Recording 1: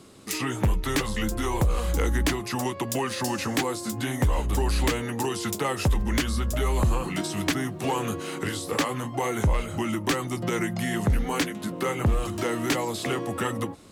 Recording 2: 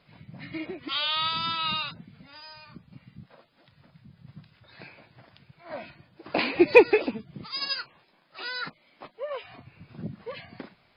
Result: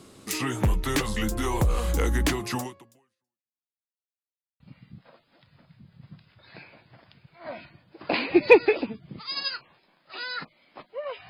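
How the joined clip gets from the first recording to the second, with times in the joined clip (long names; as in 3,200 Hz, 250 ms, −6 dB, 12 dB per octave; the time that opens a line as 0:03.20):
recording 1
0:02.57–0:03.69: fade out exponential
0:03.69–0:04.60: silence
0:04.60: continue with recording 2 from 0:02.85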